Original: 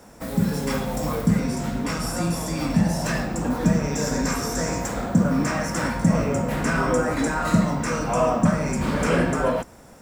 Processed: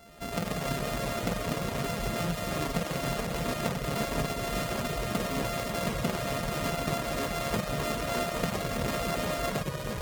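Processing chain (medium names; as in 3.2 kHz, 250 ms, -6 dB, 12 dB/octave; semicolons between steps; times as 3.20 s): sorted samples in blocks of 64 samples; compression, threshold -23 dBFS, peak gain reduction 10 dB; ever faster or slower copies 89 ms, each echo -2 st, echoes 3; reverb removal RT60 0.6 s; trim -5 dB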